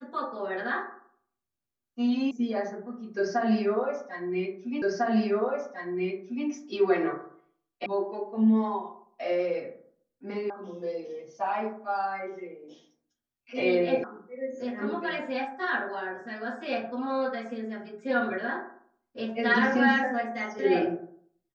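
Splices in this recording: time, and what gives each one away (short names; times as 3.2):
2.31 sound cut off
4.82 repeat of the last 1.65 s
7.86 sound cut off
10.5 sound cut off
14.04 sound cut off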